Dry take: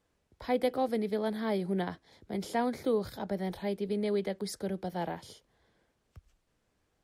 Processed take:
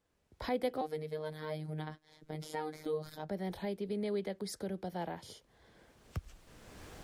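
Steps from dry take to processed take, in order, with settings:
camcorder AGC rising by 20 dB per second
0:00.81–0:03.29: phases set to zero 154 Hz
level −5 dB

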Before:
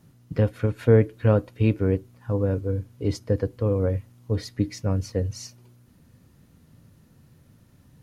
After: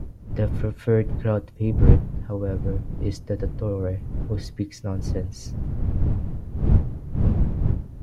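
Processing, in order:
wind on the microphone 100 Hz −20 dBFS
gain on a spectral selection 0:01.55–0:01.78, 1,100–5,400 Hz −10 dB
level −3.5 dB

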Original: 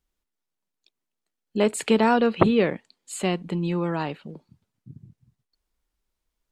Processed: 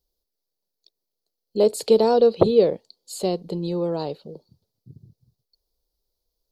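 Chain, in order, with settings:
drawn EQ curve 100 Hz 0 dB, 260 Hz −5 dB, 480 Hz +8 dB, 1,800 Hz −17 dB, 2,700 Hz −12 dB, 4,500 Hz +10 dB, 8,000 Hz −4 dB, 12,000 Hz +7 dB

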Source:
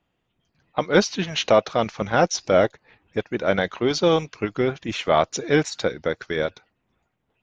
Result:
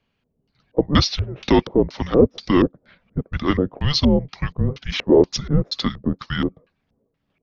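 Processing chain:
frequency shifter −280 Hz
auto-filter low-pass square 2.1 Hz 480–4,500 Hz
level +1 dB

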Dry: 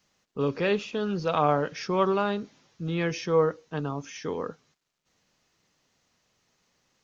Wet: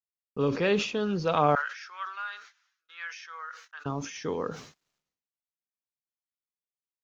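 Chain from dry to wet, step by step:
0:01.55–0:03.86: four-pole ladder high-pass 1,300 Hz, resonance 60%
noise gate −57 dBFS, range −40 dB
level that may fall only so fast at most 93 dB per second

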